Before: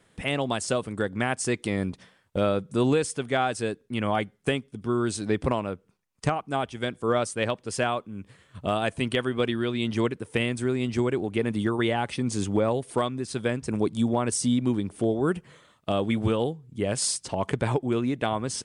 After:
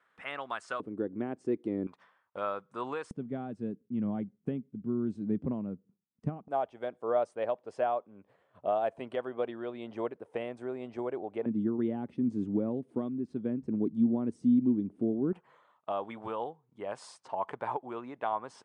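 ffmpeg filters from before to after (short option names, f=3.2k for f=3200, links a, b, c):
-af "asetnsamples=n=441:p=0,asendcmd='0.8 bandpass f 320;1.87 bandpass f 1100;3.11 bandpass f 210;6.48 bandpass f 670;11.46 bandpass f 250;15.33 bandpass f 920',bandpass=f=1.3k:t=q:w=2.4:csg=0"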